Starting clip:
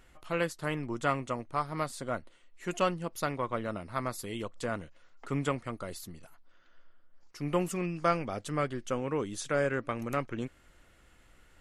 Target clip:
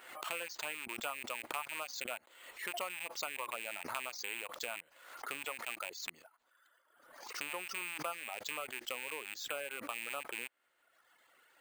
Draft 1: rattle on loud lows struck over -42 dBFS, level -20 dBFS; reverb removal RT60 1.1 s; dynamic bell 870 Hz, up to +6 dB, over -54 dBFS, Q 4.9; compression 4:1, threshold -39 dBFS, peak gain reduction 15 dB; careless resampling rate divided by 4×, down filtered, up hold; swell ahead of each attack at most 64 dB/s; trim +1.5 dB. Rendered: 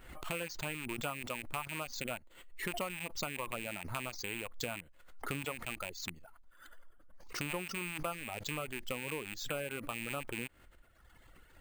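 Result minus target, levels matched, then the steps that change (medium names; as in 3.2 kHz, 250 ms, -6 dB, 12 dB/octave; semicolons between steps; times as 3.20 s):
500 Hz band +3.0 dB
add after compression: high-pass 590 Hz 12 dB/octave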